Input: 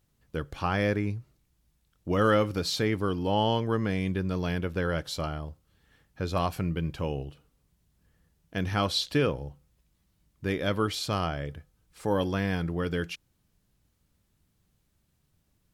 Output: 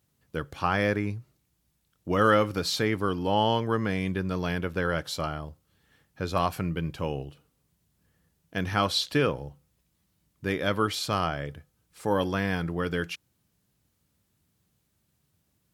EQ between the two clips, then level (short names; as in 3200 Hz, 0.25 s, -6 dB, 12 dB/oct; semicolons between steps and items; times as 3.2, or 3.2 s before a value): HPF 79 Hz; high shelf 8000 Hz +4 dB; dynamic EQ 1300 Hz, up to +4 dB, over -42 dBFS, Q 0.78; 0.0 dB